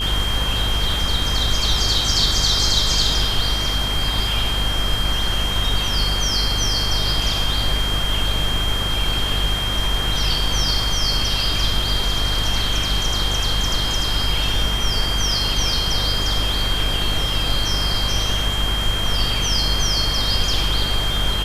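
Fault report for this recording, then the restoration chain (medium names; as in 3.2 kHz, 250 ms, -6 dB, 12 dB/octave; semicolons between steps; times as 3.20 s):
buzz 50 Hz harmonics 31 -25 dBFS
whine 3.2 kHz -23 dBFS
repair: de-hum 50 Hz, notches 31; band-stop 3.2 kHz, Q 30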